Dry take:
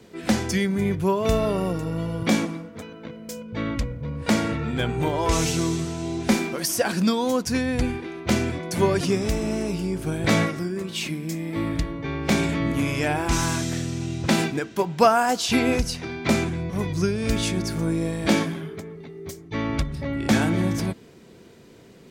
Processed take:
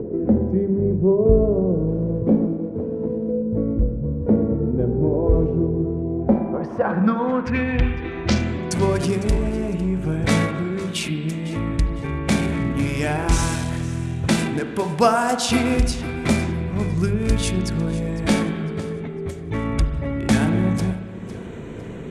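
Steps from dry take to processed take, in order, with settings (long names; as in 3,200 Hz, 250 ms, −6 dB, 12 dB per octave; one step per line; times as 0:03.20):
adaptive Wiener filter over 9 samples
low-shelf EQ 130 Hz +9 dB
hum removal 65.79 Hz, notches 15
upward compression, threshold −20 dBFS
low-pass filter sweep 440 Hz → 10,000 Hz, 0:06.01–0:08.88
on a send: feedback echo with a high-pass in the loop 504 ms, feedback 36%, level −16.5 dB
on the sum: spring reverb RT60 1.7 s, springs 38/59 ms, chirp 40 ms, DRR 8 dB
0:01.88–0:03.29: windowed peak hold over 3 samples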